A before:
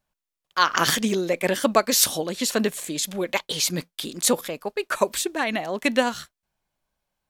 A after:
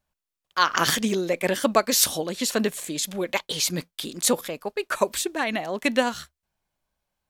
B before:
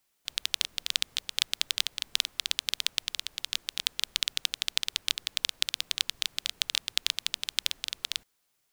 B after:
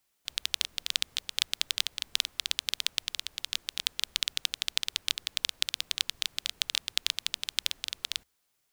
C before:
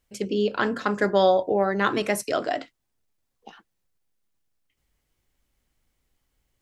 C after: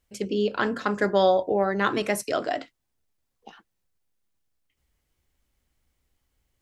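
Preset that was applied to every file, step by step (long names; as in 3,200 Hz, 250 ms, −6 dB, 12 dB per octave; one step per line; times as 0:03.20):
parametric band 71 Hz +6 dB 0.34 octaves
level −1 dB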